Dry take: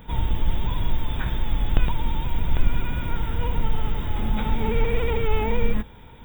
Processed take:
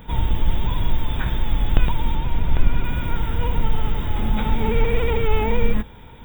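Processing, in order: 2.15–2.84 s: treble shelf 5.1 kHz -8.5 dB; trim +3 dB

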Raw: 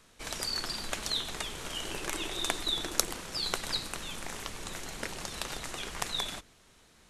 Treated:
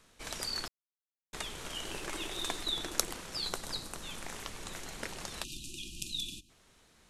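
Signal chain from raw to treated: 0.68–1.33 s: mute; 1.87–2.64 s: CVSD coder 64 kbps; 3.49–4.04 s: peaking EQ 2.4 kHz -6.5 dB 1.5 oct; 5.44–6.49 s: spectral selection erased 370–2400 Hz; trim -3 dB

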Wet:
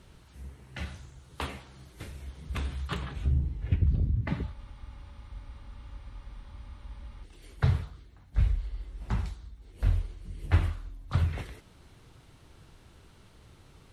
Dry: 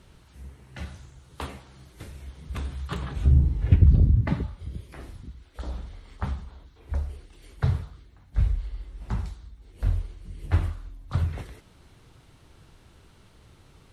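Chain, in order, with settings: dynamic bell 2.5 kHz, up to +5 dB, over -54 dBFS, Q 0.95; gain riding within 4 dB 0.5 s; spectral freeze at 4.56 s, 2.68 s; trim -5 dB

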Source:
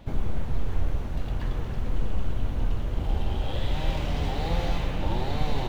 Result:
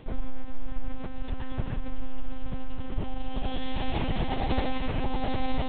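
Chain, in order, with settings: monotone LPC vocoder at 8 kHz 260 Hz

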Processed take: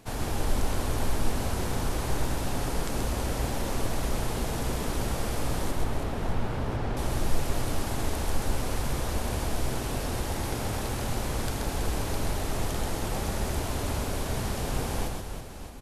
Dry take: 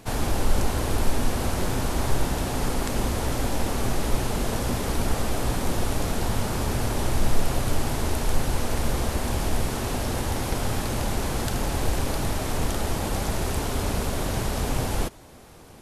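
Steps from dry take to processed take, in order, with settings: 5.71–6.97 s: Bessel low-pass 2.4 kHz, order 2; reverse bouncing-ball echo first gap 130 ms, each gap 1.5×, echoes 5; trim -6 dB

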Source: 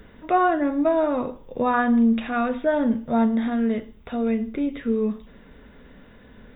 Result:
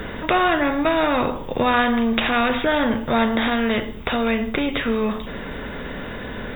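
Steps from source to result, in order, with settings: spectrum-flattening compressor 2:1; trim +5.5 dB

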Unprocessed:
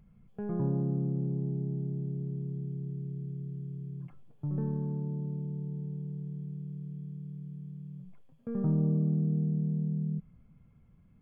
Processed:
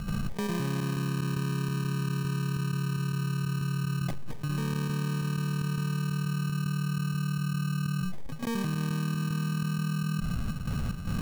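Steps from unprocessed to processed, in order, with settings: sample-and-hold 32×; trance gate ".xxx..xxxx." 187 bpm -12 dB; level flattener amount 100%; trim -4.5 dB

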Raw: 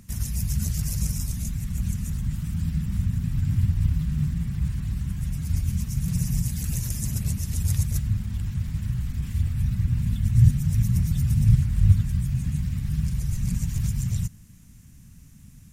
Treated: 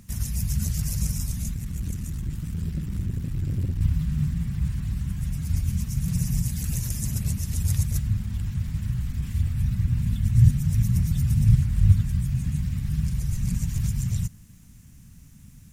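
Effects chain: 1.53–3.81 s: valve stage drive 20 dB, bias 0.5; word length cut 12-bit, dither triangular

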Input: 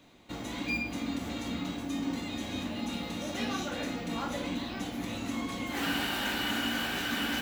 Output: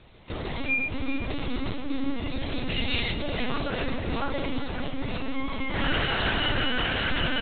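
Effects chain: 2.69–3.13 s: resonant high shelf 1.6 kHz +8.5 dB, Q 1.5; LPC vocoder at 8 kHz pitch kept; on a send: delay 383 ms -12.5 dB; on the sum: trim +6.5 dB

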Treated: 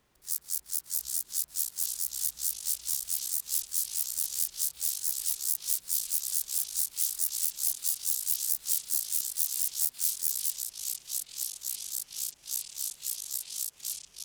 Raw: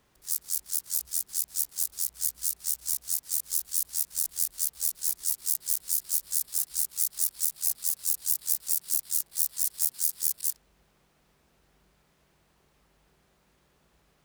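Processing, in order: ever faster or slower copies 692 ms, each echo -4 st, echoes 3, each echo -6 dB; de-hum 47.82 Hz, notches 36; trim -2.5 dB

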